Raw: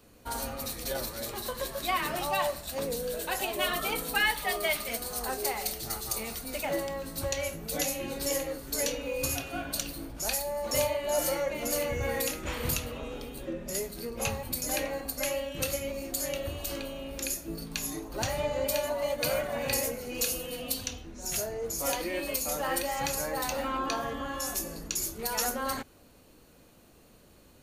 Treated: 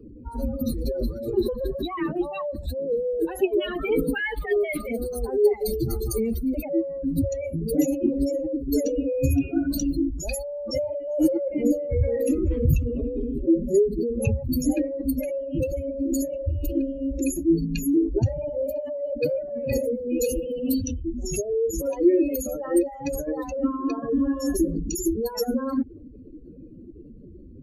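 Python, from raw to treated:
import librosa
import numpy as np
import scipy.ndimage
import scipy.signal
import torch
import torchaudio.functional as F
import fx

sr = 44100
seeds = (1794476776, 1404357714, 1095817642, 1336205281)

y = fx.spec_expand(x, sr, power=2.9)
y = fx.low_shelf_res(y, sr, hz=520.0, db=12.0, q=3.0)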